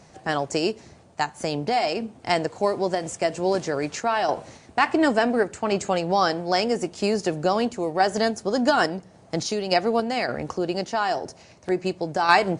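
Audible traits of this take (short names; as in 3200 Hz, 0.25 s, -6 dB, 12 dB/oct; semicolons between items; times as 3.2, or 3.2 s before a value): random-step tremolo; MP3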